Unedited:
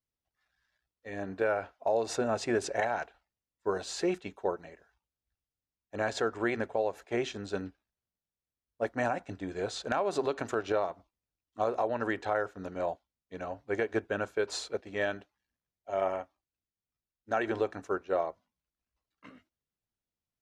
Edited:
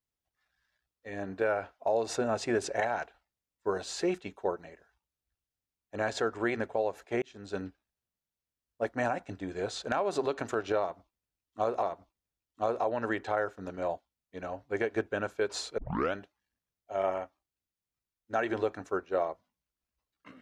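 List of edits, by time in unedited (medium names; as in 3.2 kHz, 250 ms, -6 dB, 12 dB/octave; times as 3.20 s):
7.22–7.61 s: fade in
10.81–11.83 s: loop, 2 plays
14.76 s: tape start 0.35 s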